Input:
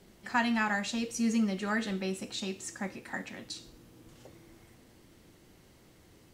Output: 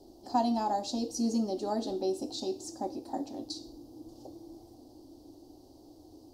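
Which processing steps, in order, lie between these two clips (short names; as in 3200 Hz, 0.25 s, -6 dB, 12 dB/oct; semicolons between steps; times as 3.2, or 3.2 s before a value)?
EQ curve 110 Hz 0 dB, 190 Hz -13 dB, 290 Hz +14 dB, 460 Hz +1 dB, 770 Hz +9 dB, 1400 Hz -19 dB, 2100 Hz -29 dB, 4700 Hz +5 dB, 7700 Hz -6 dB, 12000 Hz -2 dB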